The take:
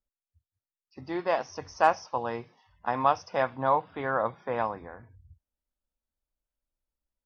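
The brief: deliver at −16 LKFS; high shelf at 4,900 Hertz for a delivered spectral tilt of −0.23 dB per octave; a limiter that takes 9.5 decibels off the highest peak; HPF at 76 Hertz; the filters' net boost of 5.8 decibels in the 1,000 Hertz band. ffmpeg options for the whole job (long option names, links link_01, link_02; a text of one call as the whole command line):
ffmpeg -i in.wav -af "highpass=76,equalizer=frequency=1000:width_type=o:gain=7.5,highshelf=frequency=4900:gain=-7,volume=12.5dB,alimiter=limit=-1dB:level=0:latency=1" out.wav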